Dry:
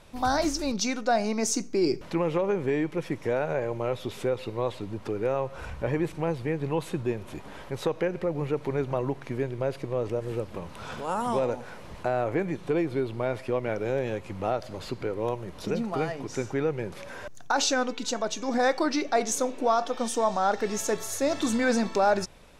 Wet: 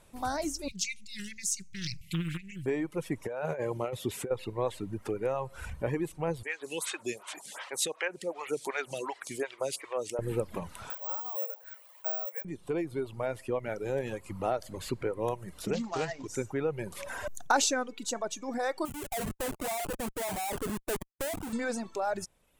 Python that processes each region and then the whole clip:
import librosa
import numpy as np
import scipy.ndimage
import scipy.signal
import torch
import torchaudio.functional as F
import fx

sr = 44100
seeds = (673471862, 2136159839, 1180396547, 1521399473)

y = fx.chain(x, sr, fx.brickwall_bandstop(low_hz=200.0, high_hz=2000.0),
    fx.doppler_dist(depth_ms=0.54), at=(0.68, 2.66))
y = fx.chain(y, sr, fx.highpass(hz=43.0, slope=12),
    fx.over_compress(threshold_db=-29.0, ratio=-0.5), at=(3.26, 4.31))
y = fx.chain(y, sr, fx.weighting(curve='ITU-R 468'),
    fx.stagger_phaser(hz=2.7), at=(6.43, 10.19))
y = fx.chain(y, sr, fx.steep_highpass(hz=490.0, slope=72),
    fx.resample_bad(factor=2, down='none', up='zero_stuff'), at=(10.9, 12.45))
y = fx.chain(y, sr, fx.cvsd(bps=32000),
    fx.high_shelf(hz=2900.0, db=10.0),
    fx.doppler_dist(depth_ms=0.18), at=(15.73, 16.28))
y = fx.chain(y, sr, fx.ladder_lowpass(hz=940.0, resonance_pct=50),
    fx.schmitt(flips_db=-44.5), at=(18.85, 21.53))
y = fx.dereverb_blind(y, sr, rt60_s=1.2)
y = fx.high_shelf_res(y, sr, hz=6700.0, db=7.0, q=1.5)
y = fx.rider(y, sr, range_db=10, speed_s=0.5)
y = F.gain(torch.from_numpy(y), -5.5).numpy()